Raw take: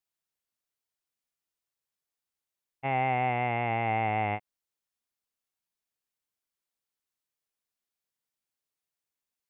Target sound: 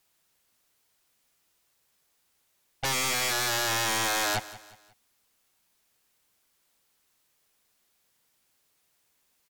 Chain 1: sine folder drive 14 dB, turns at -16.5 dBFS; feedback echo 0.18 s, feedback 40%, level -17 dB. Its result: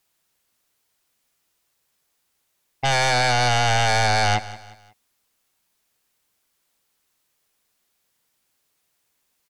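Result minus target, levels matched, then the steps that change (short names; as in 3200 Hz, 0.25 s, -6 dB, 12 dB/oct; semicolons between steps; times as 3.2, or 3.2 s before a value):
sine folder: distortion -16 dB
change: sine folder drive 14 dB, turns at -24.5 dBFS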